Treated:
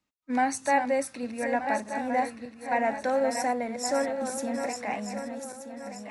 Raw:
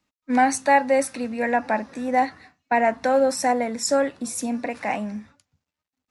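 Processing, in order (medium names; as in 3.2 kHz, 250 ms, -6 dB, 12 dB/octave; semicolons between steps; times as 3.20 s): backward echo that repeats 614 ms, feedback 61%, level -7 dB; trim -7 dB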